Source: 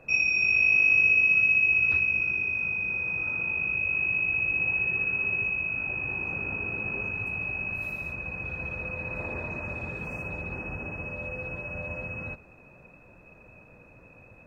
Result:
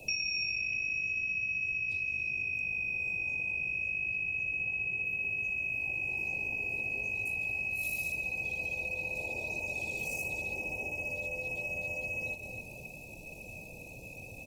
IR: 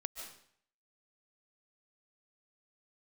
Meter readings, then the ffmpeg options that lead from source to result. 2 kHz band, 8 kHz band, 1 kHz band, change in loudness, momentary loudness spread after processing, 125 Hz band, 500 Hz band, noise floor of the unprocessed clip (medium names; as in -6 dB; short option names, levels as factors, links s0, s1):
-7.0 dB, no reading, -7.5 dB, -7.5 dB, 14 LU, -8.5 dB, -4.5 dB, -53 dBFS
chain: -filter_complex "[0:a]asuperstop=centerf=1500:order=12:qfactor=0.89,asplit=2[s0][s1];[s1]adelay=274,lowpass=f=2700:p=1,volume=0.224,asplit=2[s2][s3];[s3]adelay=274,lowpass=f=2700:p=1,volume=0.33,asplit=2[s4][s5];[s5]adelay=274,lowpass=f=2700:p=1,volume=0.33[s6];[s0][s2][s4][s6]amix=inputs=4:normalize=0,asplit=2[s7][s8];[1:a]atrim=start_sample=2205[s9];[s8][s9]afir=irnorm=-1:irlink=0,volume=0.501[s10];[s7][s10]amix=inputs=2:normalize=0,acrossover=split=140|310[s11][s12][s13];[s11]acompressor=threshold=0.00398:ratio=4[s14];[s12]acompressor=threshold=0.00158:ratio=4[s15];[s13]acompressor=threshold=0.02:ratio=4[s16];[s14][s15][s16]amix=inputs=3:normalize=0,bass=f=250:g=2,treble=f=4000:g=11,acompressor=threshold=0.0112:ratio=4,highshelf=f=2400:g=12" -ar 48000 -c:a libopus -b:a 20k